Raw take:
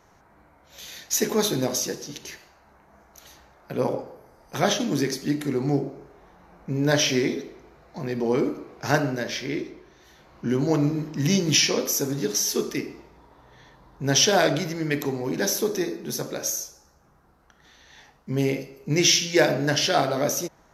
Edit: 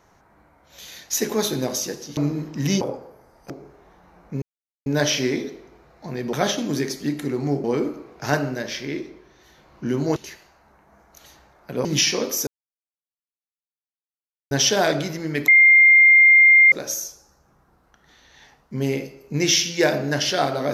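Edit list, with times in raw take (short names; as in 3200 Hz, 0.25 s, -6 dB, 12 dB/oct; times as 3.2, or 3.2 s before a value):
2.17–3.86 swap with 10.77–11.41
4.55–5.86 move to 8.25
6.78 insert silence 0.44 s
12.03–14.07 mute
15.04–16.28 bleep 2110 Hz -8.5 dBFS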